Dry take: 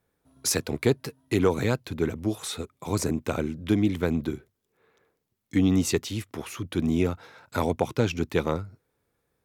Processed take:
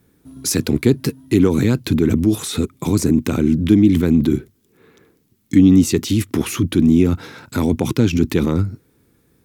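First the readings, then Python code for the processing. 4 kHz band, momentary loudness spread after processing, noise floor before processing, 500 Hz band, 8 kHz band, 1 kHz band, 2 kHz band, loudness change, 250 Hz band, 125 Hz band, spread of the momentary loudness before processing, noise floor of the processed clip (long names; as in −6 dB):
+6.5 dB, 9 LU, −78 dBFS, +5.5 dB, +6.5 dB, +1.0 dB, +4.0 dB, +10.5 dB, +12.5 dB, +11.0 dB, 10 LU, −61 dBFS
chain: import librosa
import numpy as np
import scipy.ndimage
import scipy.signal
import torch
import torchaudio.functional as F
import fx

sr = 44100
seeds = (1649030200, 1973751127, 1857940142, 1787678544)

p1 = fx.tilt_eq(x, sr, slope=1.5)
p2 = fx.over_compress(p1, sr, threshold_db=-37.0, ratio=-1.0)
p3 = p1 + (p2 * librosa.db_to_amplitude(0.5))
y = fx.low_shelf_res(p3, sr, hz=420.0, db=11.5, q=1.5)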